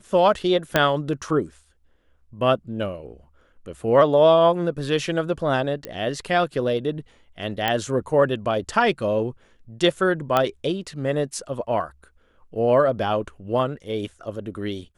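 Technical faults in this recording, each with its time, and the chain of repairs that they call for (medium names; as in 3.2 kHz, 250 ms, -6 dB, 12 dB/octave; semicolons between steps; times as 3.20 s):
0.76 s: pop -3 dBFS
5.85 s: pop -15 dBFS
7.68 s: pop -8 dBFS
10.37 s: pop -7 dBFS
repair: de-click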